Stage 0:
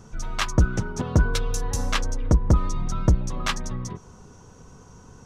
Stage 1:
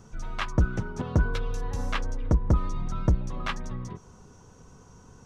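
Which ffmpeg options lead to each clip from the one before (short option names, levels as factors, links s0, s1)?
-filter_complex "[0:a]acrossover=split=3500[s0][s1];[s1]acompressor=threshold=0.00562:ratio=4:attack=1:release=60[s2];[s0][s2]amix=inputs=2:normalize=0,volume=0.631"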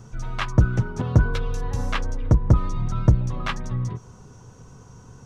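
-af "equalizer=f=120:t=o:w=0.37:g=9.5,volume=1.5"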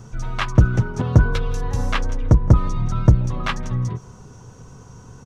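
-af "aecho=1:1:166:0.0668,volume=1.5"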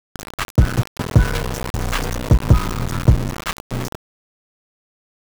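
-af "aeval=exprs='val(0)*gte(abs(val(0)),0.112)':c=same"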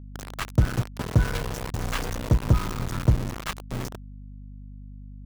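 -af "aeval=exprs='val(0)+0.0224*(sin(2*PI*50*n/s)+sin(2*PI*2*50*n/s)/2+sin(2*PI*3*50*n/s)/3+sin(2*PI*4*50*n/s)/4+sin(2*PI*5*50*n/s)/5)':c=same,volume=0.447"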